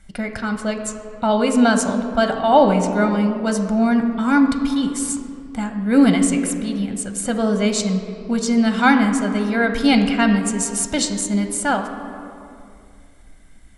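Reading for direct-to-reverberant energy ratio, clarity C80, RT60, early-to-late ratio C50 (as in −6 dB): 5.0 dB, 8.5 dB, 2.4 s, 7.5 dB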